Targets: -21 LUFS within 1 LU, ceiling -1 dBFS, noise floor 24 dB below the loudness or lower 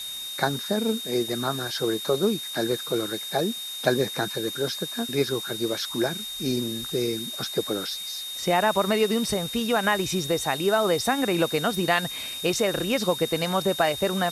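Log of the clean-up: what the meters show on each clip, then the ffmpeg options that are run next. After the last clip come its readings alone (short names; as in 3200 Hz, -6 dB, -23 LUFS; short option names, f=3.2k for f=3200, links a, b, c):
steady tone 3700 Hz; tone level -33 dBFS; noise floor -35 dBFS; noise floor target -50 dBFS; loudness -25.5 LUFS; peak -7.5 dBFS; loudness target -21.0 LUFS
-> -af "bandreject=f=3.7k:w=30"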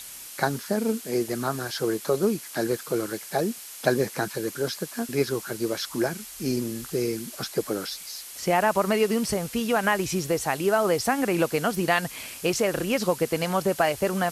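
steady tone none; noise floor -41 dBFS; noise floor target -51 dBFS
-> -af "afftdn=nr=10:nf=-41"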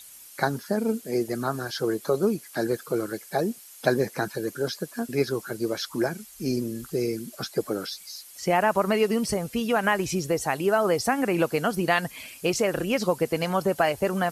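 noise floor -47 dBFS; noise floor target -51 dBFS
-> -af "afftdn=nr=6:nf=-47"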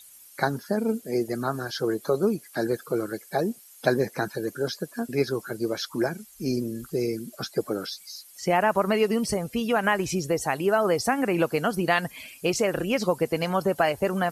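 noise floor -51 dBFS; loudness -26.5 LUFS; peak -7.5 dBFS; loudness target -21.0 LUFS
-> -af "volume=5.5dB"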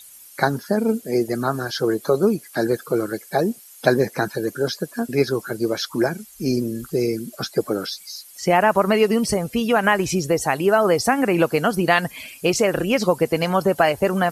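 loudness -21.0 LUFS; peak -2.0 dBFS; noise floor -45 dBFS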